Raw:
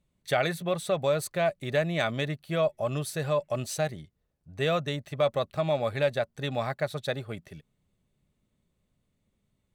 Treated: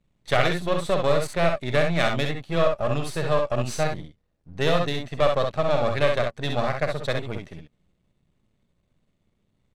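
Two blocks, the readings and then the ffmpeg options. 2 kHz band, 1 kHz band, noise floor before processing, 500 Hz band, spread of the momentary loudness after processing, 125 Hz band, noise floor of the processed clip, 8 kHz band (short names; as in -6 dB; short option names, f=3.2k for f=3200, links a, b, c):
+5.5 dB, +6.0 dB, -77 dBFS, +4.5 dB, 6 LU, +4.5 dB, -72 dBFS, +0.5 dB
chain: -filter_complex "[0:a]aeval=exprs='if(lt(val(0),0),0.251*val(0),val(0))':c=same,adynamicsmooth=sensitivity=5.5:basefreq=7.4k,asplit=2[a][b];[b]aecho=0:1:48|65:0.316|0.562[c];[a][c]amix=inputs=2:normalize=0,volume=6.5dB"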